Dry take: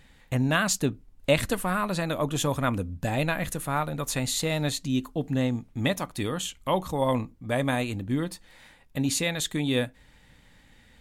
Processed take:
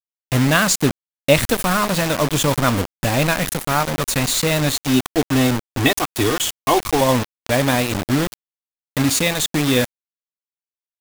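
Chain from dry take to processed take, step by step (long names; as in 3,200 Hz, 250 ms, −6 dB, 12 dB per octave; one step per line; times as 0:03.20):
0:04.82–0:07.01: comb filter 2.7 ms, depth 100%
bit reduction 5 bits
level +8 dB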